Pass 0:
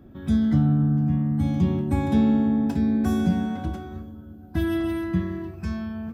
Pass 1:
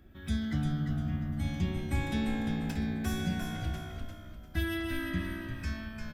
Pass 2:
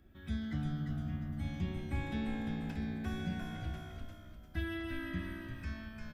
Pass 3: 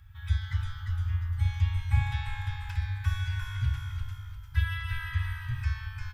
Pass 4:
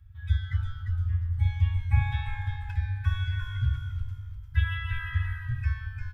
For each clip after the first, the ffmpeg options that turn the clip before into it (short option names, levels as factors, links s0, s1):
-filter_complex "[0:a]equalizer=f=125:t=o:w=1:g=-11,equalizer=f=250:t=o:w=1:g=-10,equalizer=f=500:t=o:w=1:g=-8,equalizer=f=1000:t=o:w=1:g=-9,equalizer=f=2000:t=o:w=1:g=4,asplit=2[s0][s1];[s1]asplit=4[s2][s3][s4][s5];[s2]adelay=348,afreqshift=-61,volume=0.501[s6];[s3]adelay=696,afreqshift=-122,volume=0.166[s7];[s4]adelay=1044,afreqshift=-183,volume=0.0543[s8];[s5]adelay=1392,afreqshift=-244,volume=0.018[s9];[s6][s7][s8][s9]amix=inputs=4:normalize=0[s10];[s0][s10]amix=inputs=2:normalize=0"
-filter_complex "[0:a]acrossover=split=3800[s0][s1];[s1]acompressor=threshold=0.00112:ratio=4:attack=1:release=60[s2];[s0][s2]amix=inputs=2:normalize=0,volume=0.531"
-af "afftfilt=real='re*(1-between(b*sr/4096,130,800))':imag='im*(1-between(b*sr/4096,130,800))':win_size=4096:overlap=0.75,equalizer=f=100:t=o:w=0.91:g=9,volume=2.37"
-af "afftdn=nr=13:nf=-40,volume=1.26"